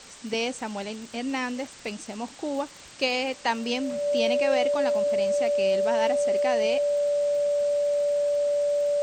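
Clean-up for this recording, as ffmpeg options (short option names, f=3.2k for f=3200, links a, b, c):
-af "adeclick=t=4,bandreject=f=580:w=30,afftdn=nr=27:nf=-46"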